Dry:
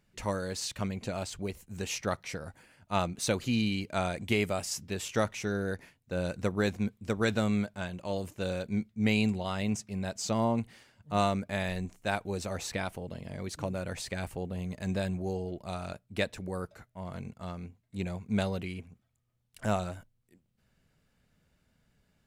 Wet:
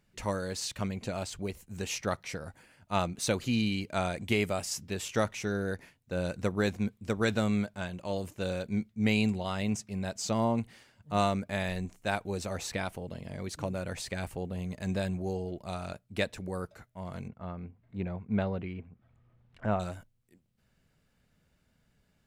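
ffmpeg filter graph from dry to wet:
-filter_complex "[0:a]asettb=1/sr,asplit=3[a][b][c];[a]atrim=end=17.284[d];[b]atrim=start=17.28:end=19.8,asetpts=PTS-STARTPTS,afade=t=in:d=0.004:c=qsin,afade=t=out:st=2.516:d=0.004:c=qsin,lowpass=1.9k,acompressor=mode=upward:threshold=-50dB:ratio=2.5:attack=3.2:release=140:knee=2.83:detection=peak[e];[c]atrim=start=19.796[f];[d][e]acrossfade=d=0.004:c1=hsin:c2=qsin[g];[g][f]acrossfade=d=0.004:c1=qsin:c2=hsin"

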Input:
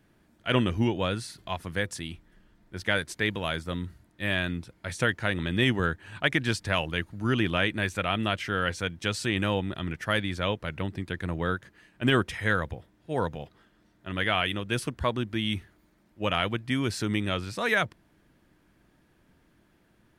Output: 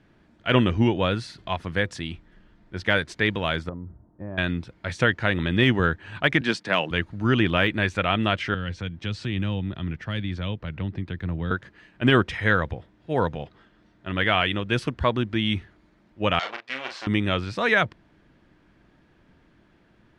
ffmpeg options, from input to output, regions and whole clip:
-filter_complex "[0:a]asettb=1/sr,asplit=3[a][b][c];[a]atrim=end=3.694[d];[b]atrim=start=3.69:end=4.38,asetpts=PTS-STARTPTS,afade=t=in:d=0.004:c=qsin,afade=t=out:st=0.686:d=0.004:c=qsin,lowpass=f=1k:w=0.5412,lowpass=f=1k:w=1.3066,acompressor=threshold=-37dB:ratio=4:attack=3.2:release=140:knee=1:detection=peak[e];[c]atrim=start=4.376[f];[d][e]acrossfade=d=0.004:c1=hsin:c2=qsin[g];[g][f]acrossfade=d=0.004:c1=qsin:c2=hsin,asettb=1/sr,asplit=3[h][i][j];[h]atrim=end=6.414[k];[i]atrim=start=6.41:end=6.91,asetpts=PTS-STARTPTS,afade=t=in:d=0.004:c=qsin,afade=t=out:st=0.496:d=0.004:c=qsin,highpass=f=170:w=0.5412,highpass=f=170:w=1.3066,agate=range=-33dB:threshold=-45dB:ratio=3:release=100:detection=peak[l];[j]atrim=start=6.906[m];[k][l]acrossfade=d=0.004:c1=hsin:c2=qsin[n];[n][m]acrossfade=d=0.004:c1=qsin:c2=hsin,asettb=1/sr,asplit=3[o][p][q];[o]atrim=end=8.544[r];[p]atrim=start=8.54:end=11.51,asetpts=PTS-STARTPTS,afade=t=in:d=0.004:c=qsin,afade=t=out:st=2.966:d=0.004:c=qsin,lowpass=f=2.5k:p=1,acrossover=split=230|3000[s][t][u];[t]acompressor=threshold=-46dB:ratio=2.5:attack=3.2:release=140:knee=2.83:detection=peak[v];[s][v][u]amix=inputs=3:normalize=0[w];[q]atrim=start=11.506[x];[r][w]acrossfade=d=0.004:c1=hsin:c2=qsin[y];[y][x]acrossfade=d=0.004:c1=qsin:c2=hsin,asettb=1/sr,asplit=3[z][aa][ab];[z]atrim=end=16.394[ac];[aa]atrim=start=16.39:end=17.07,asetpts=PTS-STARTPTS,afade=t=in:d=0.004:c=qsin,afade=t=out:st=0.676:d=0.004:c=qsin,aeval=exprs='max(val(0),0)':c=same,highpass=680,lowpass=6.4k,asplit=2[ad][ae];[ae]adelay=38,volume=-6dB[af];[ad][af]amix=inputs=2:normalize=0,atrim=end_sample=29988[ag];[ab]atrim=start=17.066[ah];[ac][ag]acrossfade=d=0.004:c1=hsin:c2=qsin[ai];[ai][ah]acrossfade=d=0.004:c1=qsin:c2=hsin,lowpass=4.5k,deesser=0.7,volume=5dB"

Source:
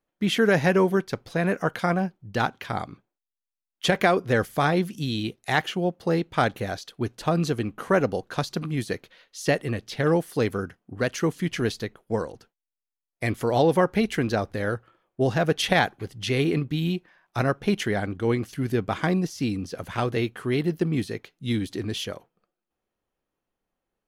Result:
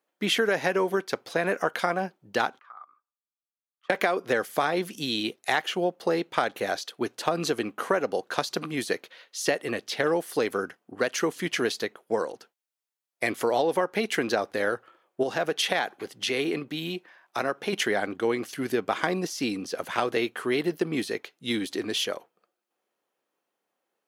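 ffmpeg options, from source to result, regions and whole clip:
-filter_complex "[0:a]asettb=1/sr,asplit=3[a][b][c];[a]atrim=end=2.594[d];[b]atrim=start=2.59:end=3.9,asetpts=PTS-STARTPTS,afade=t=in:d=0.004:c=qsin,afade=t=out:st=1.306:d=0.004:c=qsin,acompressor=threshold=-39dB:ratio=2:attack=3.2:release=140:knee=1:detection=peak,bandpass=f=1.2k:t=q:w=13[e];[c]atrim=start=3.896[f];[d][e]acrossfade=d=0.004:c1=hsin:c2=qsin[g];[g][f]acrossfade=d=0.004:c1=qsin:c2=hsin,asettb=1/sr,asplit=3[h][i][j];[h]atrim=end=15.234[k];[i]atrim=start=15.23:end=17.73,asetpts=PTS-STARTPTS,afade=t=in:d=0.004:c=qsin,afade=t=out:st=2.496:d=0.004:c=qsin,highpass=110,acompressor=threshold=-31dB:ratio=1.5:attack=3.2:release=140:knee=1:detection=peak[l];[j]atrim=start=17.726[m];[k][l]acrossfade=d=0.004:c1=hsin:c2=qsin[n];[n][m]acrossfade=d=0.004:c1=qsin:c2=hsin,highpass=360,acompressor=threshold=-25dB:ratio=6,volume=4.5dB"

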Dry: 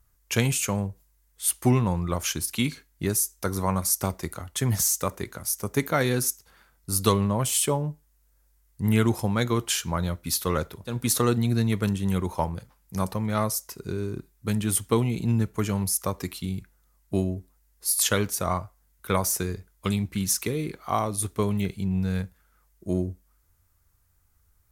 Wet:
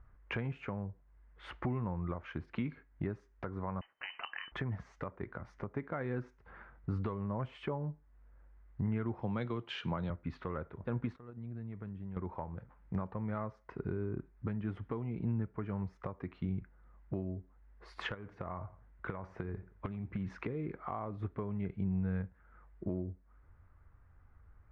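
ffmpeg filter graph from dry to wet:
-filter_complex "[0:a]asettb=1/sr,asplit=3[a][b][c];[a]atrim=end=3.814[d];[b]atrim=start=3.81:end=4.52,asetpts=PTS-STARTPTS,afade=t=in:d=0.004:c=qsin,afade=t=out:st=0.706:d=0.004:c=qsin,acompressor=threshold=-27dB:ratio=6:attack=3.2:release=140:knee=1:detection=peak,lowpass=f=2.6k:t=q:w=0.5098,lowpass=f=2.6k:t=q:w=0.6013,lowpass=f=2.6k:t=q:w=0.9,lowpass=f=2.6k:t=q:w=2.563,afreqshift=-3100[e];[c]atrim=start=4.516[f];[d][e]acrossfade=d=0.004:c1=hsin:c2=qsin[g];[g][f]acrossfade=d=0.004:c1=qsin:c2=hsin,asettb=1/sr,asplit=3[h][i][j];[h]atrim=end=9.224[k];[i]atrim=start=9.22:end=10.1,asetpts=PTS-STARTPTS,afade=t=in:d=0.004:c=qsin,afade=t=out:st=0.876:d=0.004:c=qsin,highpass=f=96:w=0.5412,highpass=f=96:w=1.3066,highshelf=f=2.4k:t=q:w=1.5:g=10[l];[j]atrim=start=10.096[m];[k][l]acrossfade=d=0.004:c1=hsin:c2=qsin[n];[n][m]acrossfade=d=0.004:c1=qsin:c2=hsin,asettb=1/sr,asplit=3[o][p][q];[o]atrim=end=11.164[r];[p]atrim=start=11.16:end=12.17,asetpts=PTS-STARTPTS,afade=t=in:d=0.004:c=qsin,afade=t=out:st=1.006:d=0.004:c=qsin,agate=range=-23dB:threshold=-18dB:ratio=16:release=100:detection=peak,bass=f=250:g=4,treble=f=4k:g=4,acompressor=threshold=-44dB:ratio=5:attack=3.2:release=140:knee=1:detection=peak[s];[q]atrim=start=12.166[t];[r][s]acrossfade=d=0.004:c1=hsin:c2=qsin[u];[u][t]acrossfade=d=0.004:c1=qsin:c2=hsin,asettb=1/sr,asplit=3[v][w][x];[v]atrim=end=18.144[y];[w]atrim=start=18.14:end=20.3,asetpts=PTS-STARTPTS,afade=t=in:d=0.004:c=qsin,afade=t=out:st=2.156:d=0.004:c=qsin,acompressor=threshold=-27dB:ratio=10:attack=3.2:release=140:knee=1:detection=peak,aecho=1:1:86|172:0.0944|0.0274,atrim=end_sample=95256[z];[x]atrim=start=20.296[aa];[y][z]acrossfade=d=0.004:c1=hsin:c2=qsin[ab];[ab][aa]acrossfade=d=0.004:c1=qsin:c2=hsin,lowpass=f=1.9k:w=0.5412,lowpass=f=1.9k:w=1.3066,acompressor=threshold=-43dB:ratio=2.5,alimiter=level_in=7dB:limit=-24dB:level=0:latency=1:release=472,volume=-7dB,volume=6dB"

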